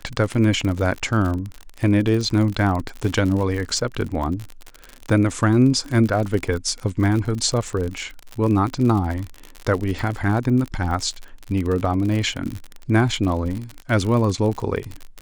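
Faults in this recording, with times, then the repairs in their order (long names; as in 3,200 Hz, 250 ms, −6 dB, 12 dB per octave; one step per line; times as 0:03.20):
surface crackle 53 per second −25 dBFS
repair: click removal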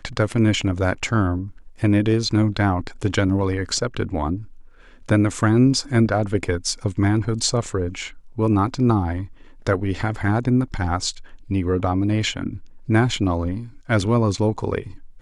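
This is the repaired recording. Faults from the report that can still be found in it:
none of them is left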